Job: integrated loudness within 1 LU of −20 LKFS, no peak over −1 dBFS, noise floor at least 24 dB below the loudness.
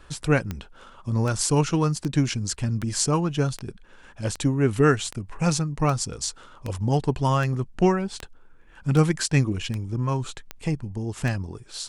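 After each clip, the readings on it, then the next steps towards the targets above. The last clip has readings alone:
number of clicks 15; integrated loudness −25.0 LKFS; sample peak −6.5 dBFS; target loudness −20.0 LKFS
→ click removal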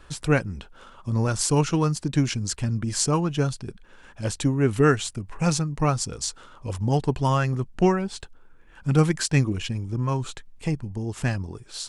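number of clicks 0; integrated loudness −24.5 LKFS; sample peak −6.5 dBFS; target loudness −20.0 LKFS
→ level +4.5 dB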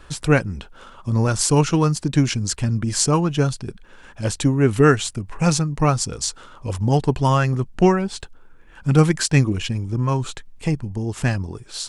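integrated loudness −20.0 LKFS; sample peak −2.0 dBFS; background noise floor −46 dBFS

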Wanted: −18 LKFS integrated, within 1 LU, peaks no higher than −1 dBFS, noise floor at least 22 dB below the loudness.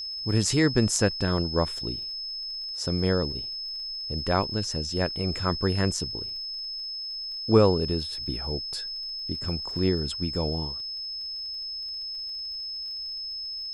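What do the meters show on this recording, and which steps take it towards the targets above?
crackle rate 39 per second; interfering tone 5,200 Hz; level of the tone −32 dBFS; integrated loudness −27.5 LKFS; sample peak −6.0 dBFS; target loudness −18.0 LKFS
→ click removal
notch filter 5,200 Hz, Q 30
level +9.5 dB
brickwall limiter −1 dBFS

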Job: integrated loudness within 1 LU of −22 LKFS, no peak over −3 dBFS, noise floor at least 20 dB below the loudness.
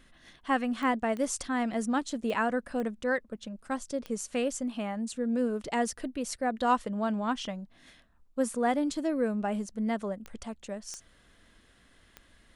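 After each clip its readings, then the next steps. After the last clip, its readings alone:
number of clicks 8; integrated loudness −31.5 LKFS; sample peak −13.5 dBFS; target loudness −22.0 LKFS
→ click removal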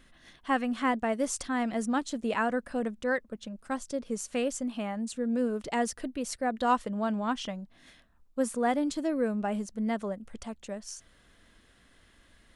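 number of clicks 0; integrated loudness −31.5 LKFS; sample peak −13.5 dBFS; target loudness −22.0 LKFS
→ level +9.5 dB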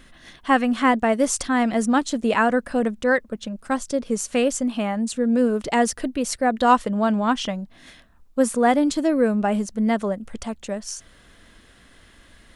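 integrated loudness −22.0 LKFS; sample peak −4.0 dBFS; background noise floor −53 dBFS

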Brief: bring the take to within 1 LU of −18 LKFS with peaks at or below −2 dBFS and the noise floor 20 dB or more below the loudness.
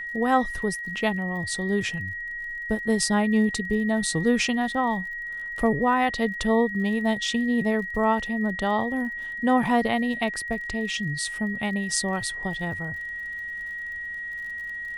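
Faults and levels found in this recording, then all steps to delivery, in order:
crackle rate 45 per second; interfering tone 1,900 Hz; level of the tone −31 dBFS; integrated loudness −25.5 LKFS; sample peak −7.0 dBFS; target loudness −18.0 LKFS
→ click removal
notch filter 1,900 Hz, Q 30
level +7.5 dB
brickwall limiter −2 dBFS

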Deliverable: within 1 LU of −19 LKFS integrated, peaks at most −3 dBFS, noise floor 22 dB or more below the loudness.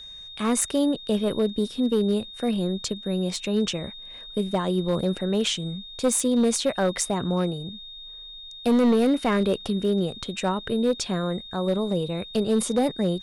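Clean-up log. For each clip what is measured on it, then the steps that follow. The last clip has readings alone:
share of clipped samples 1.4%; peaks flattened at −15.5 dBFS; interfering tone 3,700 Hz; level of the tone −39 dBFS; integrated loudness −25.0 LKFS; sample peak −15.5 dBFS; target loudness −19.0 LKFS
→ clipped peaks rebuilt −15.5 dBFS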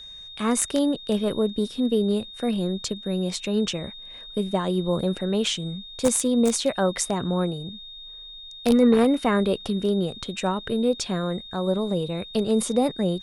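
share of clipped samples 0.0%; interfering tone 3,700 Hz; level of the tone −39 dBFS
→ notch filter 3,700 Hz, Q 30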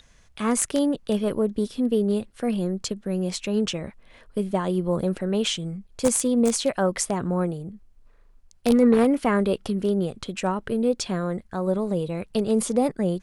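interfering tone none found; integrated loudness −24.5 LKFS; sample peak −6.5 dBFS; target loudness −19.0 LKFS
→ level +5.5 dB
brickwall limiter −3 dBFS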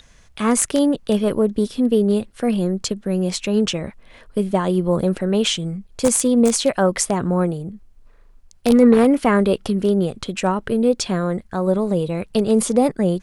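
integrated loudness −19.0 LKFS; sample peak −3.0 dBFS; background noise floor −49 dBFS

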